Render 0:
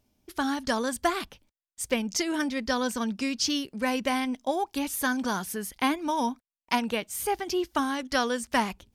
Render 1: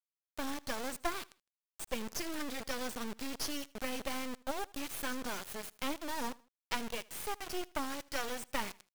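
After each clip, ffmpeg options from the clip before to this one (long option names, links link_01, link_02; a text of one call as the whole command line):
ffmpeg -i in.wav -af "aeval=exprs='0.299*(cos(1*acos(clip(val(0)/0.299,-1,1)))-cos(1*PI/2))+0.0168*(cos(3*acos(clip(val(0)/0.299,-1,1)))-cos(3*PI/2))+0.00188*(cos(8*acos(clip(val(0)/0.299,-1,1)))-cos(8*PI/2))':channel_layout=same,acrusher=bits=3:dc=4:mix=0:aa=0.000001,aecho=1:1:79|158:0.0708|0.0255,volume=-5dB" out.wav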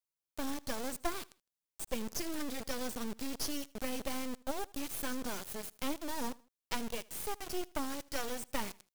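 ffmpeg -i in.wav -af "equalizer=frequency=1800:width=0.42:gain=-6,volume=2.5dB" out.wav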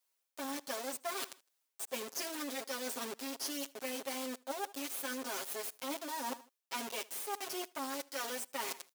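ffmpeg -i in.wav -af "highpass=390,aecho=1:1:7.4:0.93,areverse,acompressor=threshold=-46dB:ratio=6,areverse,volume=9dB" out.wav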